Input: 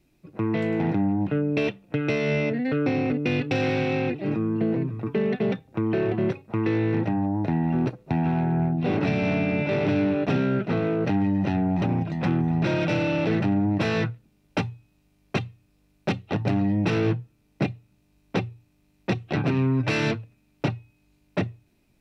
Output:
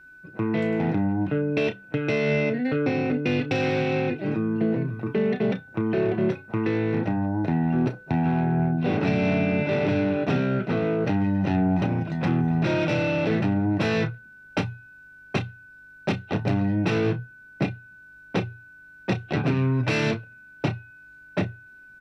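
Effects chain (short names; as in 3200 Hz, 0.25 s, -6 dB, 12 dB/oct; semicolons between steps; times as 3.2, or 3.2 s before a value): whine 1500 Hz -48 dBFS; doubler 32 ms -11 dB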